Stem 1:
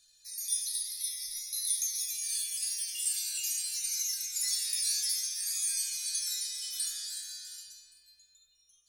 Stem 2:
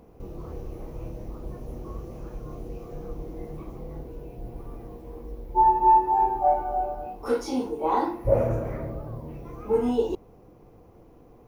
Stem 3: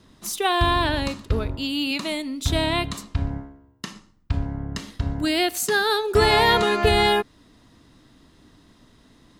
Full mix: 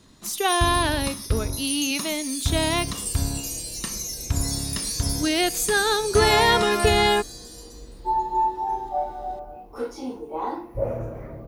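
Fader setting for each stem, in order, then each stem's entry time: +1.0 dB, -5.0 dB, -0.5 dB; 0.00 s, 2.50 s, 0.00 s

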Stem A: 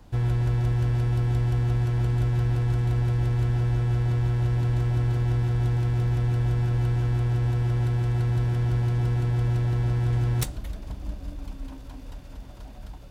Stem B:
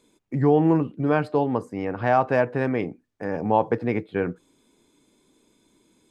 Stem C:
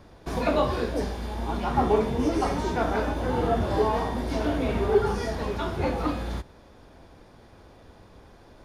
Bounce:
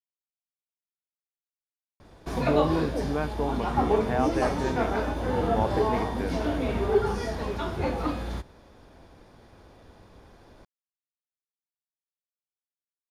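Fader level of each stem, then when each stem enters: mute, -8.0 dB, -1.5 dB; mute, 2.05 s, 2.00 s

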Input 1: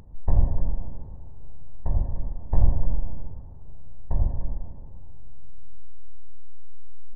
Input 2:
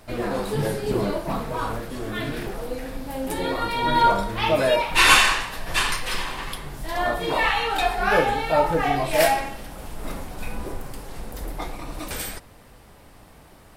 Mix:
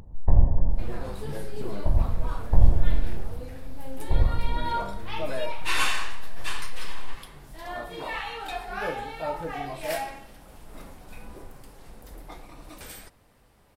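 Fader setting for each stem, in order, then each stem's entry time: +2.0 dB, -11.5 dB; 0.00 s, 0.70 s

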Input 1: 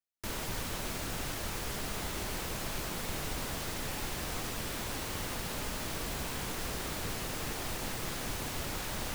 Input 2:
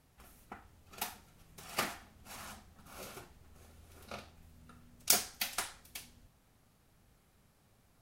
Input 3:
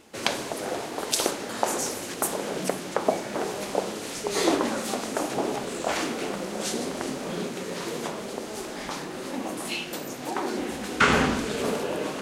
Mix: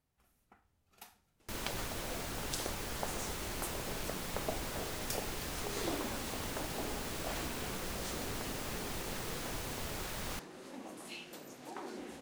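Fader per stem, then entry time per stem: -4.0 dB, -14.5 dB, -15.5 dB; 1.25 s, 0.00 s, 1.40 s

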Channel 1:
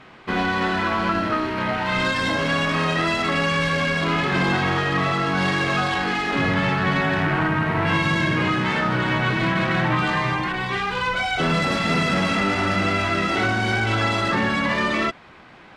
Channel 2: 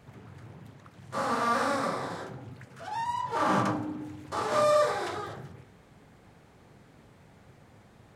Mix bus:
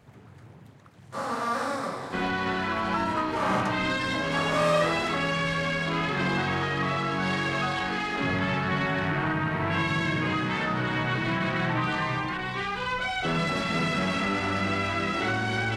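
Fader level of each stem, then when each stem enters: -6.0 dB, -1.5 dB; 1.85 s, 0.00 s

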